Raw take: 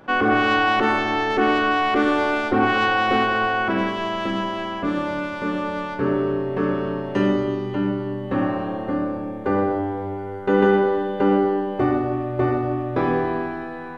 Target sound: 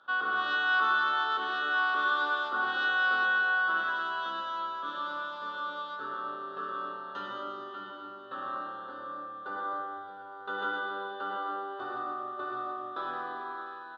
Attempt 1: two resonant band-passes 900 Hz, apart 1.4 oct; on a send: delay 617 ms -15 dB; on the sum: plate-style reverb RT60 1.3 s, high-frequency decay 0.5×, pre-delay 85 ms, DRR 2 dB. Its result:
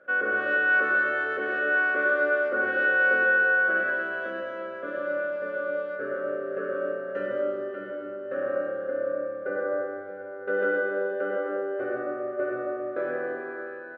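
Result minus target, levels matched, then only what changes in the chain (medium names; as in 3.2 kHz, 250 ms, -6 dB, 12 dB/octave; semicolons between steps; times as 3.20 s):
1 kHz band -9.0 dB
change: two resonant band-passes 2.2 kHz, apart 1.4 oct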